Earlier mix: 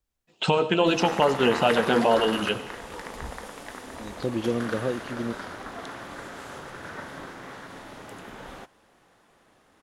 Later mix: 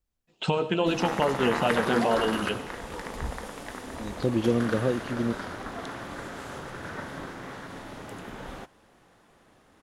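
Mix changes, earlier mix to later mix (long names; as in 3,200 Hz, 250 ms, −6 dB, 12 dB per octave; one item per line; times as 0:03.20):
first voice −5.5 dB
master: add low-shelf EQ 290 Hz +5.5 dB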